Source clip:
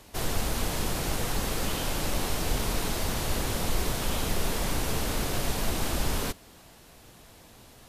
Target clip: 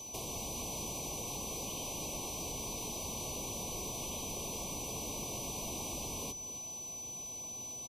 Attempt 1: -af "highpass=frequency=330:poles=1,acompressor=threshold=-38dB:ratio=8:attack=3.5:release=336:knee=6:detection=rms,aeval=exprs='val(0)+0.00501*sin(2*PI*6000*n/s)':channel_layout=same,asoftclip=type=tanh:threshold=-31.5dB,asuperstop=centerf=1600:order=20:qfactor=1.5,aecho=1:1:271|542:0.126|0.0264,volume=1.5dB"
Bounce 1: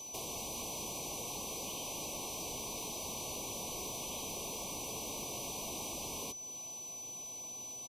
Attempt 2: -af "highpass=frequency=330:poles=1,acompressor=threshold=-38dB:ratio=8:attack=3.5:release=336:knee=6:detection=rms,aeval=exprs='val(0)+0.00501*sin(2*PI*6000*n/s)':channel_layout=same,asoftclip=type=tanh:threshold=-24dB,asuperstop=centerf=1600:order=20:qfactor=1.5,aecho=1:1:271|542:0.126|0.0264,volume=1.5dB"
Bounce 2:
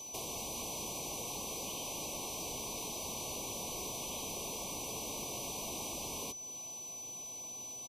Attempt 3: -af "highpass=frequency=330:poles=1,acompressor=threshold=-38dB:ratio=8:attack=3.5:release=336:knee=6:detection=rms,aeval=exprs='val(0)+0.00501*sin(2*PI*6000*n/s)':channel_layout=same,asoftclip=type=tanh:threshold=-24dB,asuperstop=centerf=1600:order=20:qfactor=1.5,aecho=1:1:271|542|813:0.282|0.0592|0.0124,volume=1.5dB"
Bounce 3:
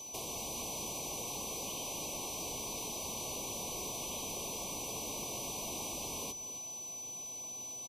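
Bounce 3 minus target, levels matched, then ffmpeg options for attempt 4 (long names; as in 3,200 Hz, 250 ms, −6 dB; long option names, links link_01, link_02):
125 Hz band −5.0 dB
-af "highpass=frequency=120:poles=1,acompressor=threshold=-38dB:ratio=8:attack=3.5:release=336:knee=6:detection=rms,aeval=exprs='val(0)+0.00501*sin(2*PI*6000*n/s)':channel_layout=same,asoftclip=type=tanh:threshold=-24dB,asuperstop=centerf=1600:order=20:qfactor=1.5,aecho=1:1:271|542|813:0.282|0.0592|0.0124,volume=1.5dB"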